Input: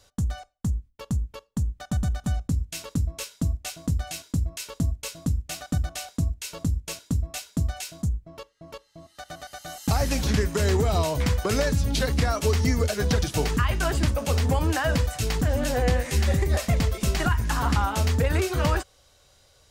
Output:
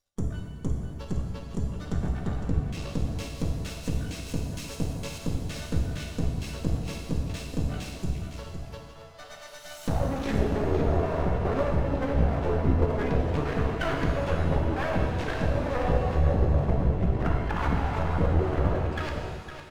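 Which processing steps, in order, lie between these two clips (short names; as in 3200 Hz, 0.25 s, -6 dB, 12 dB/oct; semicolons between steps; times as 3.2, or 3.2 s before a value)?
reverse delay 0.222 s, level -6 dB; spectral noise reduction 21 dB; treble ducked by the level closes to 630 Hz, closed at -19.5 dBFS; dynamic EQ 1700 Hz, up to +7 dB, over -47 dBFS, Q 3.1; on a send: echo 0.509 s -9 dB; on the sum: half-wave rectifier; shimmer reverb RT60 1.4 s, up +7 st, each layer -8 dB, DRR 1.5 dB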